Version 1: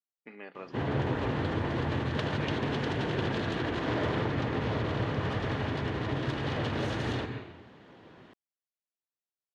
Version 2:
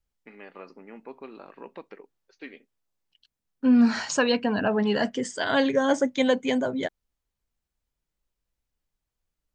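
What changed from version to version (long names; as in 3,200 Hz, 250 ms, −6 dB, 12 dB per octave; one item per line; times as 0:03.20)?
second voice: unmuted
background: muted
reverb: off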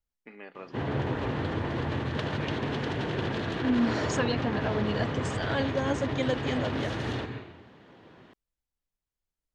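second voice −7.5 dB
background: unmuted
reverb: on, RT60 0.90 s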